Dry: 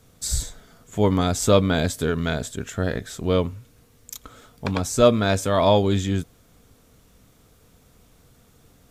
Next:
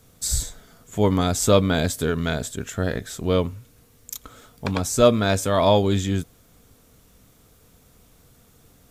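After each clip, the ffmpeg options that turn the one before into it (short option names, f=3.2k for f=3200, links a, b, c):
-af "highshelf=f=9k:g=6"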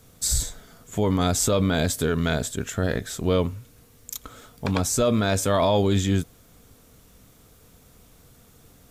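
-af "alimiter=limit=-14dB:level=0:latency=1:release=27,volume=1.5dB"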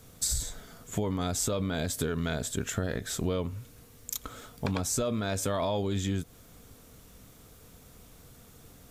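-af "acompressor=threshold=-26dB:ratio=12"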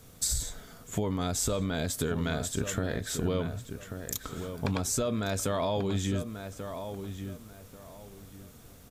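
-filter_complex "[0:a]asplit=2[a][b];[b]adelay=1138,lowpass=f=2.6k:p=1,volume=-8.5dB,asplit=2[c][d];[d]adelay=1138,lowpass=f=2.6k:p=1,volume=0.27,asplit=2[e][f];[f]adelay=1138,lowpass=f=2.6k:p=1,volume=0.27[g];[a][c][e][g]amix=inputs=4:normalize=0"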